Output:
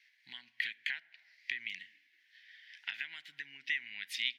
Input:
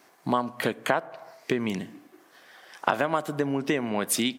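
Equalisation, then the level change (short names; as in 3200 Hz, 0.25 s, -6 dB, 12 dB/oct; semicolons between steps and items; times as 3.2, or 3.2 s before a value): elliptic high-pass 1900 Hz, stop band 40 dB; air absorption 310 m; high shelf 11000 Hz +5 dB; +3.0 dB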